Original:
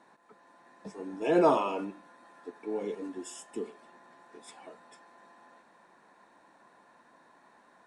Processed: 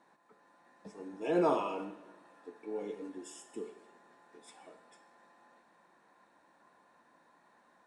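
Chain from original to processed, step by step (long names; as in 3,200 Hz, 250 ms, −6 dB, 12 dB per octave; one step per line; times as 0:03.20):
coupled-rooms reverb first 0.84 s, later 2.7 s, from −18 dB, DRR 8 dB
level −6 dB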